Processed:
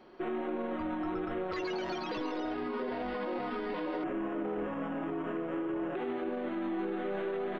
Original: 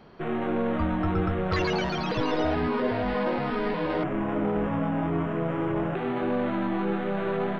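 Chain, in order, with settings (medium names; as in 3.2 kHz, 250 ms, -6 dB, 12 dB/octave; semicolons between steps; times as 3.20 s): resonant low shelf 220 Hz -7 dB, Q 3; comb 5.5 ms, depth 48%; peak limiter -22 dBFS, peak gain reduction 11 dB; trim -5.5 dB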